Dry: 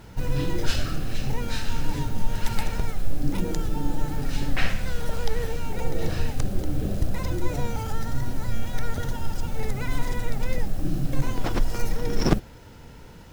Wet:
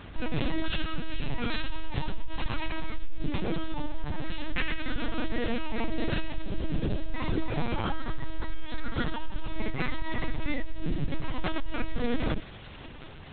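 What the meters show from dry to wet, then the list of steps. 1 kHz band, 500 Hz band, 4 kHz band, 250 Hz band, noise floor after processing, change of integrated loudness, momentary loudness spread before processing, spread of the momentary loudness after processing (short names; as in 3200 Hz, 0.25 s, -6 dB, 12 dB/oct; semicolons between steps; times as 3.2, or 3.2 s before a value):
-2.5 dB, -3.5 dB, -1.5 dB, -2.0 dB, -44 dBFS, -4.0 dB, 5 LU, 7 LU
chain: high shelf 2100 Hz +8.5 dB; limiter -13.5 dBFS, peak gain reduction 11.5 dB; compressor 16:1, threshold -20 dBFS, peak gain reduction 5.5 dB; on a send: thin delay 0.424 s, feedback 67%, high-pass 2700 Hz, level -10.5 dB; on the sum: LPC vocoder at 8 kHz pitch kept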